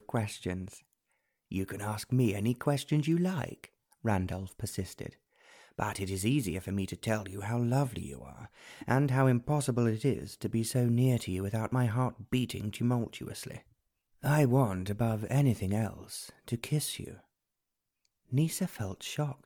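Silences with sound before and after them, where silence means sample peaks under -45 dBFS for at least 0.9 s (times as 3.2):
17.17–18.32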